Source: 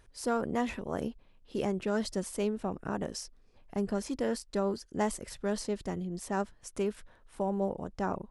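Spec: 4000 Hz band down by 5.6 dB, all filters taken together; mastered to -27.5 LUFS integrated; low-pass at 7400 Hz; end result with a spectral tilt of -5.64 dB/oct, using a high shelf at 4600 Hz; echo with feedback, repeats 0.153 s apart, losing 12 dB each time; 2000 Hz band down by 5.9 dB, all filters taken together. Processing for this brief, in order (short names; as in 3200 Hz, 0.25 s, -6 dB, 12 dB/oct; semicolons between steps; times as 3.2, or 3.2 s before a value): LPF 7400 Hz; bell 2000 Hz -7 dB; bell 4000 Hz -8.5 dB; high shelf 4600 Hz +4.5 dB; feedback echo 0.153 s, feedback 25%, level -12 dB; gain +7 dB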